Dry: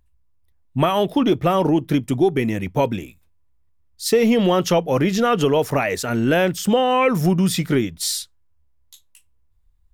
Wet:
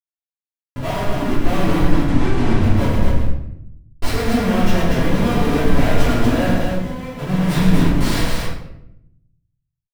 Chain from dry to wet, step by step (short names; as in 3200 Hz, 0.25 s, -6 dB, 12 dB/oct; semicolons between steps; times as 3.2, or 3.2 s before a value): level-crossing sampler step -24.5 dBFS; Schmitt trigger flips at -30.5 dBFS; tone controls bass +5 dB, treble -6 dB; 0.77–1.32 negative-ratio compressor -22 dBFS, ratio -1; 1.86–2.61 LPF 8600 Hz 12 dB/oct; 6.53–7.27 level quantiser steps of 17 dB; loudspeakers at several distances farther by 36 m -6 dB, 82 m -4 dB; reverb RT60 0.80 s, pre-delay 3 ms, DRR -9.5 dB; gain -11 dB